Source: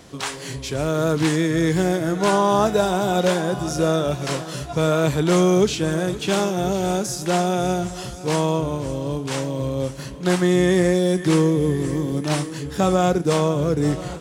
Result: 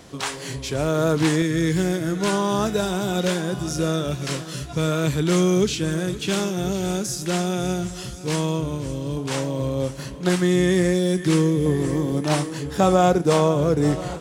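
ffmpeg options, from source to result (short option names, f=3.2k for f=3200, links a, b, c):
-af "asetnsamples=n=441:p=0,asendcmd='1.42 equalizer g -8.5;9.17 equalizer g 0;10.29 equalizer g -6.5;11.66 equalizer g 3',equalizer=f=750:t=o:w=1.4:g=0.5"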